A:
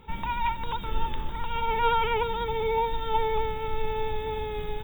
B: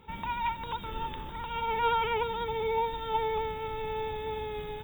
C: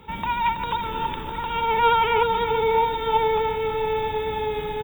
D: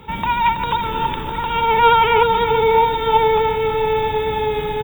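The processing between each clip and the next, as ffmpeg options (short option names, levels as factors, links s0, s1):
-af "highpass=f=77:p=1,volume=0.708"
-filter_complex "[0:a]acrossover=split=130|3000[s0][s1][s2];[s0]alimiter=level_in=7.94:limit=0.0631:level=0:latency=1:release=120,volume=0.126[s3];[s1]aecho=1:1:328|656|984|1312|1640|1968:0.398|0.203|0.104|0.0528|0.0269|0.0137[s4];[s3][s4][s2]amix=inputs=3:normalize=0,volume=2.66"
-af "equalizer=f=130:t=o:w=0.3:g=3.5,volume=2"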